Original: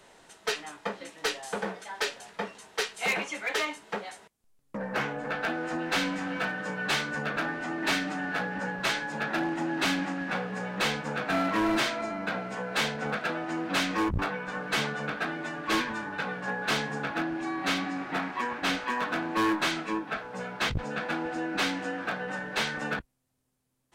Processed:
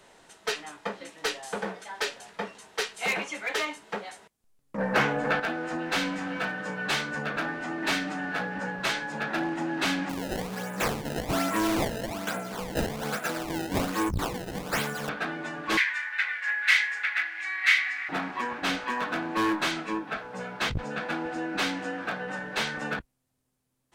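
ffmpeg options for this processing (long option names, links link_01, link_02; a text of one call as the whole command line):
ffmpeg -i in.wav -filter_complex "[0:a]asettb=1/sr,asplit=3[link_01][link_02][link_03];[link_01]atrim=end=4.784[link_04];[link_02]atrim=start=4.78:end=5.4,asetpts=PTS-STARTPTS,afade=type=in:duration=0.004:curve=qsin,afade=type=out:start_time=0.616:duration=0.004:curve=qsin,acontrast=71[link_05];[link_03]atrim=start=5.396[link_06];[link_04][link_05]acrossfade=duration=0.004:curve1=hsin:curve2=qsin[link_07];[link_07][link_06]acrossfade=duration=0.004:curve1=qsin:curve2=hsin,asettb=1/sr,asplit=3[link_08][link_09][link_10];[link_08]atrim=end=10.094[link_11];[link_09]atrim=start=10.09:end=15.09,asetpts=PTS-STARTPTS,afade=type=in:duration=0.004:curve=qsin,afade=type=out:start_time=4.996:duration=0.004:curve=qsin,acrusher=samples=22:mix=1:aa=0.000001:lfo=1:lforange=35.2:lforate=1.2[link_12];[link_10]atrim=start=15.086[link_13];[link_11][link_12]acrossfade=duration=0.004:curve1=hsin:curve2=qsin[link_14];[link_14][link_13]acrossfade=duration=0.004:curve1=qsin:curve2=hsin,asettb=1/sr,asplit=3[link_15][link_16][link_17];[link_15]atrim=end=15.774[link_18];[link_16]atrim=start=15.77:end=18.09,asetpts=PTS-STARTPTS,afade=type=in:duration=0.004:curve=qsin,afade=type=out:start_time=2.316:duration=0.004:curve=qsin,highpass=frequency=2000:width_type=q:width=7.6[link_19];[link_17]atrim=start=18.086[link_20];[link_18][link_19]acrossfade=duration=0.004:curve1=hsin:curve2=qsin[link_21];[link_21][link_20]acrossfade=duration=0.004:curve1=qsin:curve2=hsin" out.wav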